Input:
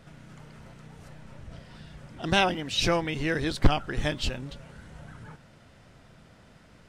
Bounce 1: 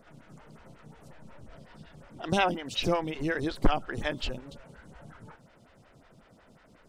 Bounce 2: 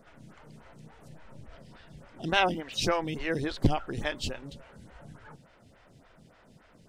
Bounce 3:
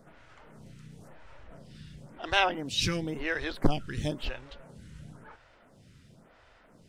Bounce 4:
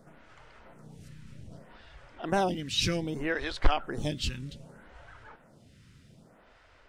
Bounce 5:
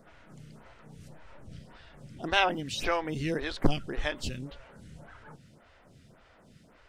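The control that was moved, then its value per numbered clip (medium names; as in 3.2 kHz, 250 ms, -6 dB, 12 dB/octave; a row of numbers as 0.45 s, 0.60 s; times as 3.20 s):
lamp-driven phase shifter, rate: 5.5 Hz, 3.5 Hz, 0.97 Hz, 0.64 Hz, 1.8 Hz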